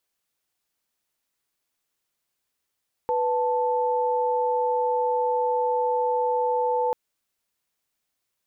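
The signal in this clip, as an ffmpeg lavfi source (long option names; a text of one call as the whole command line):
ffmpeg -f lavfi -i "aevalsrc='0.0668*(sin(2*PI*493.88*t)+sin(2*PI*880*t))':duration=3.84:sample_rate=44100" out.wav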